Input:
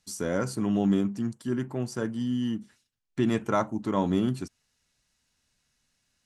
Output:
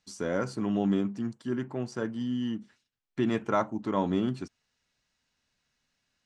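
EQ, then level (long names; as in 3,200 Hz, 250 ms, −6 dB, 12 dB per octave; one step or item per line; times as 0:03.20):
high-frequency loss of the air 93 metres
low-shelf EQ 170 Hz −7 dB
0.0 dB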